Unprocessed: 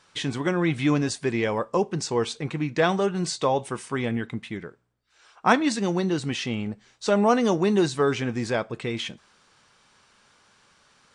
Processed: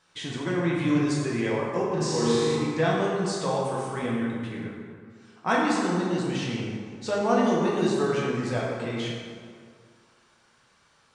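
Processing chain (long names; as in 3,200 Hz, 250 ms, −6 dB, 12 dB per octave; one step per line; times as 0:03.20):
0:01.83–0:02.55: flutter between parallel walls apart 6.6 metres, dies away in 1.5 s
dense smooth reverb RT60 2.1 s, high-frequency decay 0.55×, DRR −4.5 dB
level −8 dB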